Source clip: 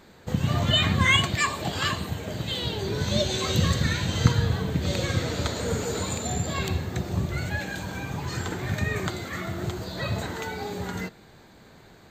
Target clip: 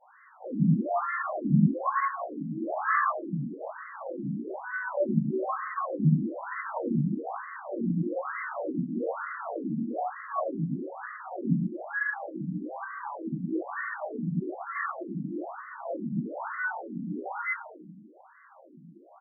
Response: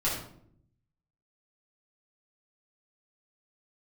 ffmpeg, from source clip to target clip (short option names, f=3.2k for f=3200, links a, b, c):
-filter_complex "[0:a]equalizer=f=430:t=o:w=0.21:g=-12,aecho=1:1:130:0.178,atempo=0.63[a];[1:a]atrim=start_sample=2205,afade=t=out:st=0.34:d=0.01,atrim=end_sample=15435[b];[a][b]afir=irnorm=-1:irlink=0,afftfilt=real='re*between(b*sr/1024,210*pow(1500/210,0.5+0.5*sin(2*PI*1.1*pts/sr))/1.41,210*pow(1500/210,0.5+0.5*sin(2*PI*1.1*pts/sr))*1.41)':imag='im*between(b*sr/1024,210*pow(1500/210,0.5+0.5*sin(2*PI*1.1*pts/sr))/1.41,210*pow(1500/210,0.5+0.5*sin(2*PI*1.1*pts/sr))*1.41)':win_size=1024:overlap=0.75,volume=-2.5dB"